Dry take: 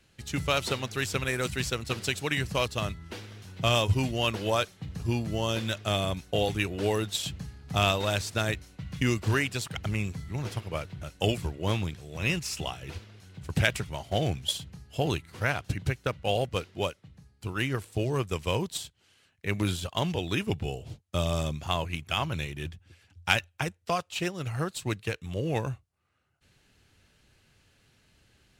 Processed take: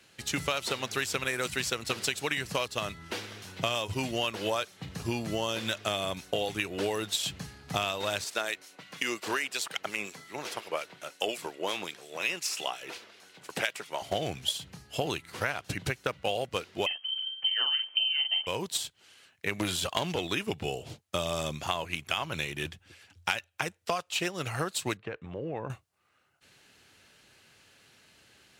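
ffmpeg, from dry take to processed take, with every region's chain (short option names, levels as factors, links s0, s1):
-filter_complex "[0:a]asettb=1/sr,asplit=3[s0][s1][s2];[s0]atrim=end=8.244[s3];[s1]atrim=start=8.24:end=14.02,asetpts=PTS-STARTPTS,afade=t=in:d=0.004:c=qsin,afade=t=out:st=5.776:d=0.004:c=qsin,highpass=350,acrossover=split=1900[s4][s5];[s4]aeval=exprs='val(0)*(1-0.5/2+0.5/2*cos(2*PI*5.6*n/s))':c=same[s6];[s5]aeval=exprs='val(0)*(1-0.5/2-0.5/2*cos(2*PI*5.6*n/s))':c=same[s7];[s6][s7]amix=inputs=2:normalize=0[s8];[s2]atrim=start=14.016[s9];[s3][s8]acrossfade=d=0.004:c1=hsin:c2=qsin[s10];[s10][s9]acrossfade=d=0.004:c1=qsin:c2=hsin,asettb=1/sr,asplit=3[s11][s12][s13];[s11]atrim=end=16.864[s14];[s12]atrim=start=16.86:end=18.47,asetpts=PTS-STARTPTS,afade=t=in:d=0.004:c=qsin,afade=t=out:st=1.606:d=0.004:c=qsin,aemphasis=mode=reproduction:type=bsi,asplit=2[s15][s16];[s16]adelay=45,volume=0.501[s17];[s15][s17]amix=inputs=2:normalize=0,atrim=end_sample=71001,lowpass=f=2700:t=q:w=0.5098,lowpass=f=2700:t=q:w=0.6013,lowpass=f=2700:t=q:w=0.9,lowpass=f=2700:t=q:w=2.563,afreqshift=-3200[s18];[s13]atrim=start=18.466[s19];[s14][s18]acrossfade=d=0.004:c1=hsin:c2=qsin[s20];[s20][s19]acrossfade=d=0.004:c1=qsin:c2=hsin,asettb=1/sr,asplit=3[s21][s22][s23];[s21]atrim=end=19.604[s24];[s22]atrim=start=19.6:end=20.27,asetpts=PTS-STARTPTS,afade=t=in:d=0.004:c=qsin,afade=t=out:st=0.666:d=0.004:c=qsin,acontrast=28,aeval=exprs='(tanh(5.62*val(0)+0.3)-tanh(0.3))/5.62':c=same[s25];[s23]atrim=start=20.266[s26];[s24][s25]acrossfade=d=0.004:c1=hsin:c2=qsin[s27];[s27][s26]acrossfade=d=0.004:c1=qsin:c2=hsin,asettb=1/sr,asplit=3[s28][s29][s30];[s28]atrim=end=24.974[s31];[s29]atrim=start=24.97:end=25.7,asetpts=PTS-STARTPTS,afade=t=in:d=0.004:c=qsin,afade=t=out:st=0.726:d=0.004:c=qsin,lowpass=1400,acompressor=threshold=0.02:ratio=6:attack=3.2:release=140:knee=1:detection=peak[s32];[s30]atrim=start=25.696[s33];[s31][s32]acrossfade=d=0.004:c1=hsin:c2=qsin[s34];[s34][s33]acrossfade=d=0.004:c1=qsin:c2=hsin,highpass=f=410:p=1,acompressor=threshold=0.02:ratio=6,volume=2.24"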